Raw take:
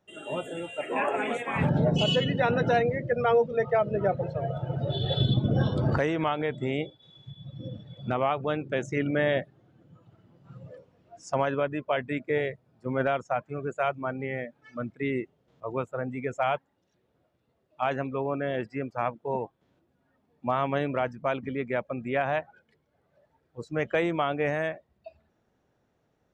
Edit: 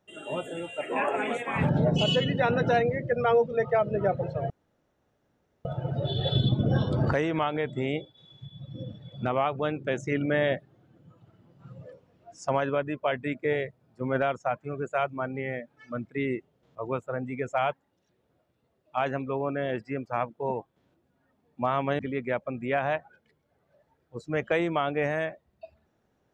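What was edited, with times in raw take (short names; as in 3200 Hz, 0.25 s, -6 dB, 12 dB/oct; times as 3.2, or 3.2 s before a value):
4.5 insert room tone 1.15 s
20.84–21.42 cut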